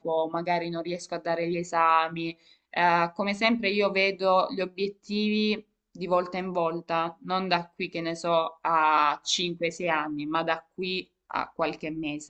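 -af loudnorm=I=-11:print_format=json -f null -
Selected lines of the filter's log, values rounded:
"input_i" : "-27.6",
"input_tp" : "-7.0",
"input_lra" : "4.3",
"input_thresh" : "-37.6",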